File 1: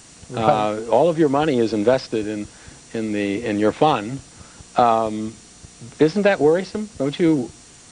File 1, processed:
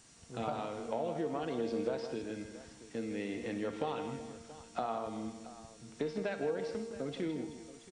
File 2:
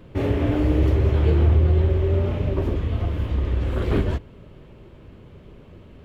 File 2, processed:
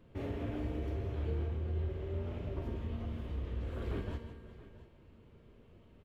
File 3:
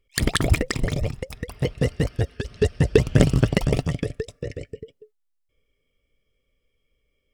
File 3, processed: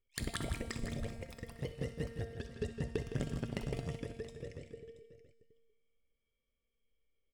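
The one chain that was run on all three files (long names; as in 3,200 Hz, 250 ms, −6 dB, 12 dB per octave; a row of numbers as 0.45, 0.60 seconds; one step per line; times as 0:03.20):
downward compressor 3 to 1, threshold −19 dBFS
tuned comb filter 230 Hz, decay 1.3 s, mix 80%
on a send: multi-tap delay 64/161/377/678 ms −14/−10/−18/−16.5 dB
on the sum: level −2 dB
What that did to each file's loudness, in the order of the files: −19.0, −17.5, −18.5 LU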